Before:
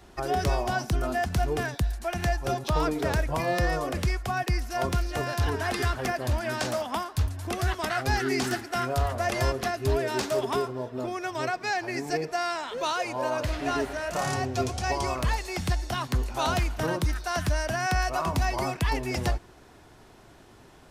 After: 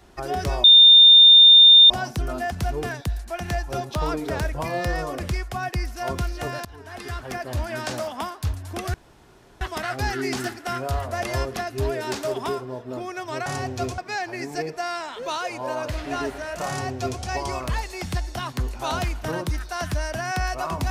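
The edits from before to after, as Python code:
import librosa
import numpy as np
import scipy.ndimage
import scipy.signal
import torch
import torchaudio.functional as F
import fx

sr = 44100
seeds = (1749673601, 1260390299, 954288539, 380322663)

y = fx.edit(x, sr, fx.insert_tone(at_s=0.64, length_s=1.26, hz=3620.0, db=-7.0),
    fx.fade_in_from(start_s=5.39, length_s=0.96, floor_db=-23.5),
    fx.insert_room_tone(at_s=7.68, length_s=0.67),
    fx.duplicate(start_s=14.24, length_s=0.52, to_s=11.53), tone=tone)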